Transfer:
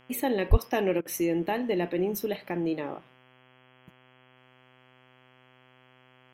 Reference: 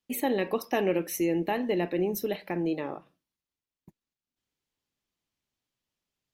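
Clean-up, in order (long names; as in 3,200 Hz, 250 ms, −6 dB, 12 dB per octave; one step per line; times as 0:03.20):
hum removal 127.6 Hz, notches 26
high-pass at the plosives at 0:00.50
repair the gap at 0:01.01, 43 ms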